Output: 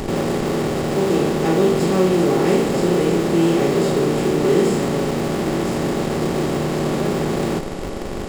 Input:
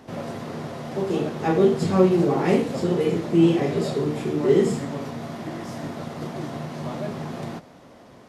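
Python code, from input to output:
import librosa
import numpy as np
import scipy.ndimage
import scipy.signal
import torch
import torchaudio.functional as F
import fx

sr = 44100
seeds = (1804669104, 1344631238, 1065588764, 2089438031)

p1 = fx.bin_compress(x, sr, power=0.4)
p2 = scipy.signal.sosfilt(scipy.signal.butter(4, 110.0, 'highpass', fs=sr, output='sos'), p1)
p3 = fx.high_shelf(p2, sr, hz=4600.0, db=8.0)
p4 = fx.schmitt(p3, sr, flips_db=-18.5)
p5 = p3 + F.gain(torch.from_numpy(p4), -8.5).numpy()
y = F.gain(torch.from_numpy(p5), -4.0).numpy()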